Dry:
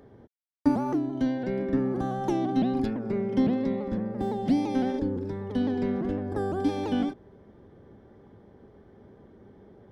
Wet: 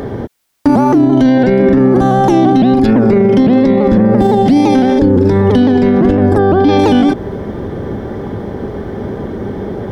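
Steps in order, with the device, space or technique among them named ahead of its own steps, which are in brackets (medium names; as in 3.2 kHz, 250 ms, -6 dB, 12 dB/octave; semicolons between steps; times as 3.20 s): 6.37–6.78 s: low-pass 3.5 kHz -> 5.2 kHz 24 dB/octave; loud club master (compression 2:1, threshold -31 dBFS, peak gain reduction 8 dB; hard clipper -21 dBFS, distortion -36 dB; loudness maximiser +32.5 dB); trim -1.5 dB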